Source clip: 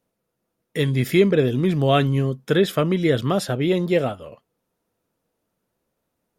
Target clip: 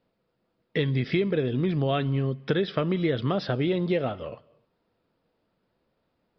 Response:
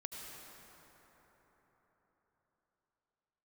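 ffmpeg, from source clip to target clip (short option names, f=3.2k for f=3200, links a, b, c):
-filter_complex "[0:a]acompressor=threshold=-25dB:ratio=6,asplit=2[a][b];[1:a]atrim=start_sample=2205,afade=t=out:st=0.36:d=0.01,atrim=end_sample=16317[c];[b][c]afir=irnorm=-1:irlink=0,volume=-15.5dB[d];[a][d]amix=inputs=2:normalize=0,aresample=11025,aresample=44100,volume=2dB"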